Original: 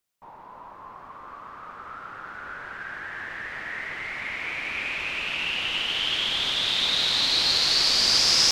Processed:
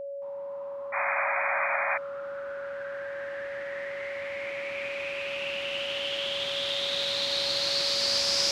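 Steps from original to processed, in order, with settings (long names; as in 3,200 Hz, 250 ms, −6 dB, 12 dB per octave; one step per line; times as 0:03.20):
high-pass filter 77 Hz
echo with a time of its own for lows and highs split 2,100 Hz, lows 138 ms, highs 289 ms, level −4 dB
sound drawn into the spectrogram noise, 0:00.92–0:01.98, 580–2,500 Hz −20 dBFS
steady tone 560 Hz −26 dBFS
level that may rise only so fast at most 170 dB per second
level −8 dB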